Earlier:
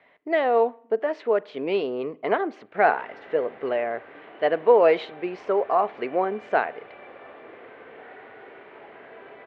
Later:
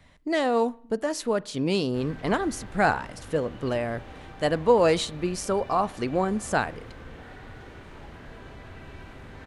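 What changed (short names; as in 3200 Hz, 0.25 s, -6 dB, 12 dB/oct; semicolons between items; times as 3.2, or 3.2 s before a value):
background: entry -0.80 s; master: remove speaker cabinet 390–2900 Hz, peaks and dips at 420 Hz +8 dB, 680 Hz +6 dB, 2100 Hz +4 dB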